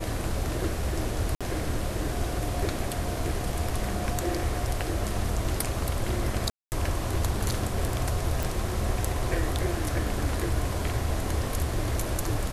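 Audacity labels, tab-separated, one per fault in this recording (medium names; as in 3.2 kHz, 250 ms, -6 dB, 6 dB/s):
1.350000	1.410000	dropout 56 ms
6.500000	6.720000	dropout 219 ms
8.430000	8.430000	pop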